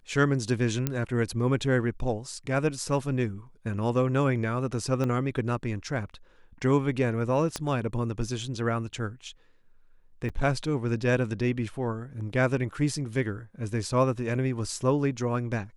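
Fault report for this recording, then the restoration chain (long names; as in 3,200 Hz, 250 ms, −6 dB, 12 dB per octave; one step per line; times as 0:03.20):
0:00.87: click −12 dBFS
0:05.04: click −18 dBFS
0:07.56: click −15 dBFS
0:10.29–0:10.30: drop-out 5.8 ms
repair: click removal
repair the gap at 0:10.29, 5.8 ms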